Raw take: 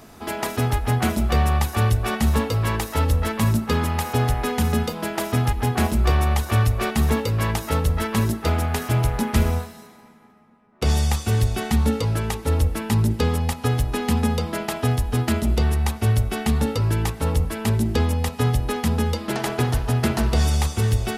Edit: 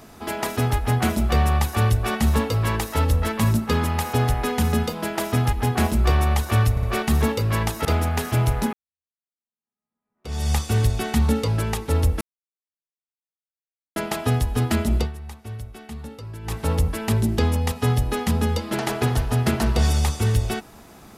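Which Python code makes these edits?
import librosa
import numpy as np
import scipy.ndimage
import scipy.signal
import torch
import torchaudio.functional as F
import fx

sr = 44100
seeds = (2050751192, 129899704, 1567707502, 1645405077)

y = fx.edit(x, sr, fx.stutter(start_s=6.71, slice_s=0.06, count=3),
    fx.cut(start_s=7.73, length_s=0.69),
    fx.fade_in_span(start_s=9.3, length_s=1.78, curve='exp'),
    fx.silence(start_s=12.78, length_s=1.75),
    fx.fade_down_up(start_s=15.57, length_s=1.54, db=-15.0, fade_s=0.13, curve='qua'), tone=tone)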